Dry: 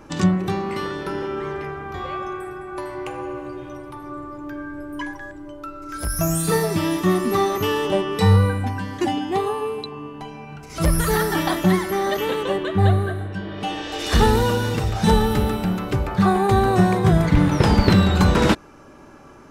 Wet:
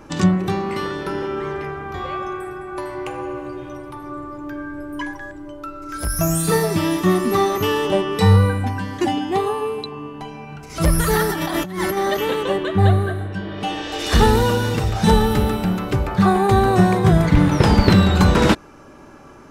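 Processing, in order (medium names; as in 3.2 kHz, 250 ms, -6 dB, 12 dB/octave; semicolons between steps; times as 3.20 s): 11.29–11.97 s: compressor with a negative ratio -26 dBFS, ratio -1; trim +2 dB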